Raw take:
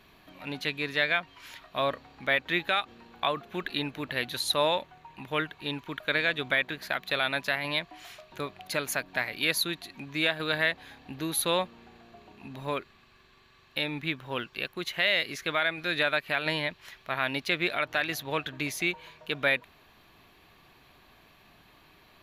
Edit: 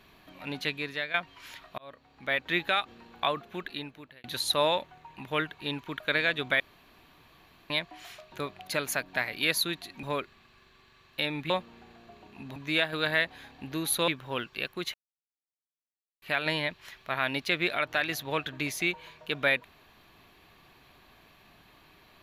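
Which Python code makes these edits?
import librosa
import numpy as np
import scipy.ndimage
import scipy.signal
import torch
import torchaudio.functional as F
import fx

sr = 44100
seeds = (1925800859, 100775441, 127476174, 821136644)

y = fx.edit(x, sr, fx.fade_out_to(start_s=0.67, length_s=0.47, floor_db=-12.5),
    fx.fade_in_span(start_s=1.78, length_s=0.78),
    fx.fade_out_span(start_s=3.27, length_s=0.97),
    fx.room_tone_fill(start_s=6.6, length_s=1.1),
    fx.swap(start_s=10.03, length_s=1.52, other_s=12.61, other_length_s=1.47),
    fx.silence(start_s=14.94, length_s=1.28), tone=tone)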